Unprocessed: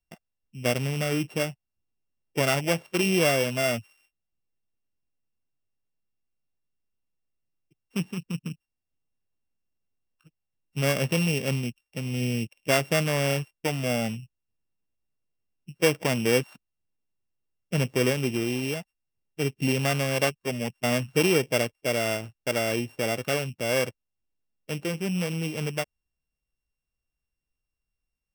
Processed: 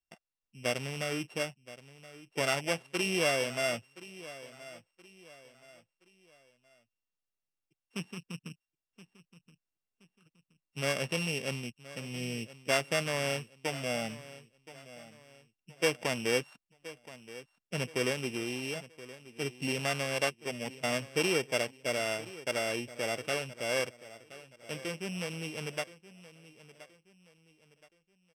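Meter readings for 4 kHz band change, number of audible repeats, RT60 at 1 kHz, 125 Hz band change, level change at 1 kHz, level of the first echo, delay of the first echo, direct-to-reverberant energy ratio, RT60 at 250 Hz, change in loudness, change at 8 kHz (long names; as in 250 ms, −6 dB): −4.0 dB, 3, no reverb audible, −12.0 dB, −5.0 dB, −17.0 dB, 1,023 ms, no reverb audible, no reverb audible, −6.5 dB, −5.5 dB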